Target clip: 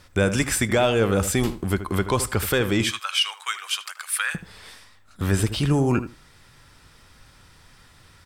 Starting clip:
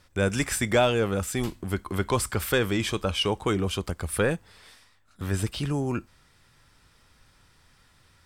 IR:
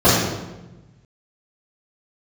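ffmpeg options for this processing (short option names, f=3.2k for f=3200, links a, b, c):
-filter_complex "[0:a]asettb=1/sr,asplit=3[a][b][c];[a]atrim=end=2.844[d];[b]atrim=start=2.84:end=4.35,asetpts=PTS-STARTPTS,afade=t=in:d=0.004:c=qsin,afade=t=out:st=1.506:d=0.004:c=qsin,highpass=f=1.3k:w=0.5412,highpass=f=1.3k:w=1.3066[e];[c]atrim=start=4.346[f];[d][e]acrossfade=d=0.004:c1=hsin:c2=qsin[g];[g][f]acrossfade=d=0.004:c1=qsin:c2=hsin,alimiter=limit=-18dB:level=0:latency=1:release=493,asplit=2[h][i];[i]adelay=78,lowpass=f=1.8k:p=1,volume=-11dB,asplit=2[j][k];[k]adelay=78,lowpass=f=1.8k:p=1,volume=0.17[l];[h][j][l]amix=inputs=3:normalize=0,volume=7.5dB"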